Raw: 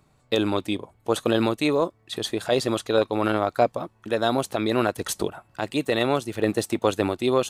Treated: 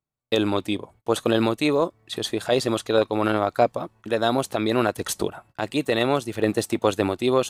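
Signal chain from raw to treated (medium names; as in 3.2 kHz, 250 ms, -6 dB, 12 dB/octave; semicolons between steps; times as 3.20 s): gate -50 dBFS, range -30 dB; trim +1 dB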